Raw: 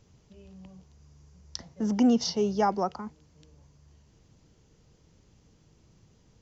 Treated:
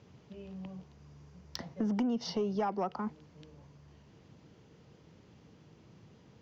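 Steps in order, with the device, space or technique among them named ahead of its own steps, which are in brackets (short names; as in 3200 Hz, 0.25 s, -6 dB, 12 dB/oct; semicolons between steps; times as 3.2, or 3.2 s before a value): AM radio (BPF 120–3500 Hz; compressor 6:1, threshold -34 dBFS, peak gain reduction 15 dB; soft clip -28 dBFS, distortion -21 dB); gain +5.5 dB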